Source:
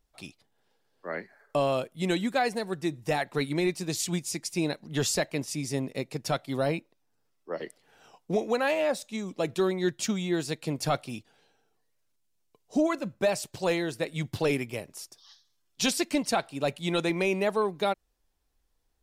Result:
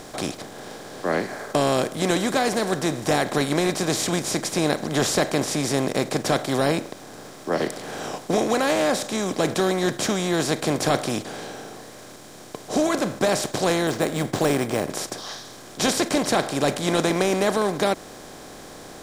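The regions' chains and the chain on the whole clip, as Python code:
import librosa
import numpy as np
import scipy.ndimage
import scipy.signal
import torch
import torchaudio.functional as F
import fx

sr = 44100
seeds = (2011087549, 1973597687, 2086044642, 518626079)

y = fx.chain(x, sr, fx.lowpass(hz=1600.0, slope=6),
    fx.resample_bad(factor=4, down='none', up='hold'), at=(13.87, 14.9))
y = fx.bin_compress(y, sr, power=0.4)
y = fx.peak_eq(y, sr, hz=2600.0, db=-7.0, octaves=0.28)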